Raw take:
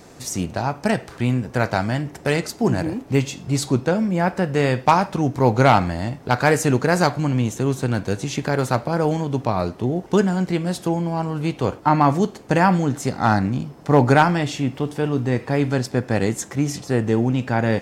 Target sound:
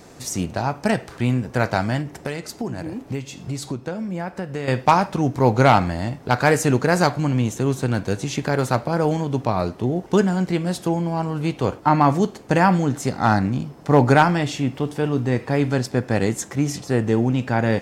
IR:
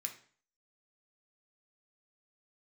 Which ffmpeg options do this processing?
-filter_complex "[0:a]asettb=1/sr,asplit=3[link_01][link_02][link_03];[link_01]atrim=end=2.014[link_04];[link_02]atrim=start=2.01:end=4.68,asetpts=PTS-STARTPTS,afade=type=in:duration=0.004:curve=qsin,afade=type=out:start_time=2.666:duration=0.004:curve=qsin,acompressor=threshold=-25dB:ratio=6[link_05];[link_03]atrim=start=4.676[link_06];[link_04][link_05]acrossfade=duration=0.004:curve1=hsin:curve2=qsin[link_07];[link_07][link_06]acrossfade=duration=0.004:curve1=qsin:curve2=hsin"

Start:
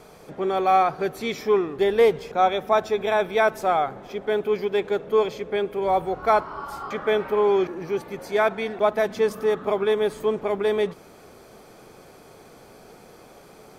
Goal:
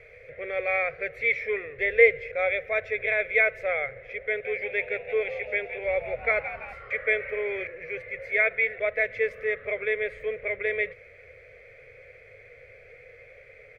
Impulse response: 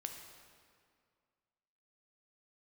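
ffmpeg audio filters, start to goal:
-filter_complex "[0:a]firequalizer=gain_entry='entry(110,0);entry(180,-26);entry(340,-24);entry(500,5);entry(860,-27);entry(2100,15);entry(3000,-9);entry(4700,-19);entry(7100,-23);entry(11000,-28)':delay=0.05:min_phase=1,asettb=1/sr,asplit=3[link_01][link_02][link_03];[link_01]atrim=end=4.264[link_04];[link_02]atrim=start=4.26:end=6.74,asetpts=PTS-STARTPTS,afade=type=in:duration=0.004:curve=qsin,afade=type=out:start_time=2.476:duration=0.004:curve=qsin,asplit=6[link_05][link_06][link_07][link_08][link_09][link_10];[link_06]adelay=168,afreqshift=87,volume=-11dB[link_11];[link_07]adelay=336,afreqshift=174,volume=-17.4dB[link_12];[link_08]adelay=504,afreqshift=261,volume=-23.8dB[link_13];[link_09]adelay=672,afreqshift=348,volume=-30.1dB[link_14];[link_10]adelay=840,afreqshift=435,volume=-36.5dB[link_15];[link_05][link_11][link_12][link_13][link_14][link_15]amix=inputs=6:normalize=0,atrim=end_sample=109368[link_16];[link_03]atrim=start=6.736[link_17];[link_04][link_16]acrossfade=duration=0.004:curve1=hsin:curve2=qsin[link_18];[link_18][link_17]acrossfade=duration=0.004:curve1=qsin:curve2=hsin"

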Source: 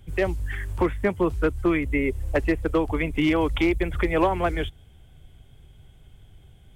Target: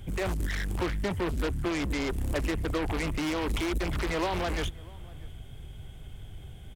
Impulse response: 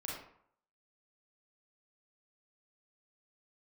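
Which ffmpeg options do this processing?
-filter_complex "[0:a]alimiter=limit=-23dB:level=0:latency=1:release=13,aeval=exprs='0.0708*(cos(1*acos(clip(val(0)/0.0708,-1,1)))-cos(1*PI/2))+0.01*(cos(3*acos(clip(val(0)/0.0708,-1,1)))-cos(3*PI/2))+0.0224*(cos(5*acos(clip(val(0)/0.0708,-1,1)))-cos(5*PI/2))':channel_layout=same,asplit=2[link_01][link_02];[link_02]adelay=641.4,volume=-23dB,highshelf=frequency=4000:gain=-14.4[link_03];[link_01][link_03]amix=inputs=2:normalize=0"

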